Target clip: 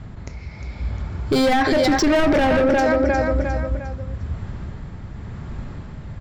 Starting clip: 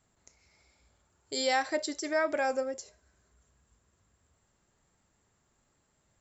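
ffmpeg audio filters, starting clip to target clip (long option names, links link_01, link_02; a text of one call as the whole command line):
ffmpeg -i in.wav -filter_complex "[0:a]lowpass=frequency=5600:width=0.5412,lowpass=frequency=5600:width=1.3066,bandreject=frequency=2800:width=25,asplit=2[link_01][link_02];[link_02]acompressor=threshold=-37dB:ratio=6,volume=2dB[link_03];[link_01][link_03]amix=inputs=2:normalize=0,tremolo=f=0.9:d=0.41,asplit=2[link_04][link_05];[link_05]aecho=0:1:354|708|1062|1416:0.299|0.125|0.0527|0.0221[link_06];[link_04][link_06]amix=inputs=2:normalize=0,dynaudnorm=framelen=110:gausssize=13:maxgain=5dB,asoftclip=type=hard:threshold=-29dB,bass=frequency=250:gain=15,treble=frequency=4000:gain=-12,alimiter=level_in=28.5dB:limit=-1dB:release=50:level=0:latency=1,volume=-8.5dB" out.wav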